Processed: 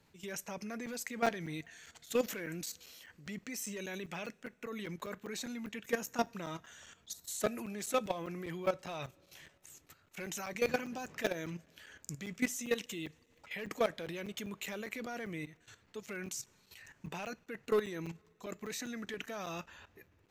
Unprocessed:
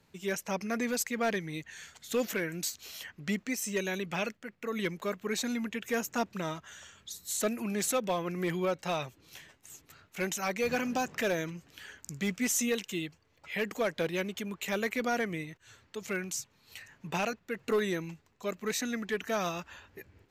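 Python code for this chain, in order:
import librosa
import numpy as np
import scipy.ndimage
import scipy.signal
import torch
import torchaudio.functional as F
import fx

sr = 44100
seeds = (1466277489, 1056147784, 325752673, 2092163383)

y = fx.level_steps(x, sr, step_db=14)
y = fx.rev_double_slope(y, sr, seeds[0], early_s=0.26, late_s=3.2, knee_db=-21, drr_db=17.5)
y = fx.buffer_crackle(y, sr, first_s=0.86, period_s=0.2, block=256, kind='zero')
y = y * librosa.db_to_amplitude(1.0)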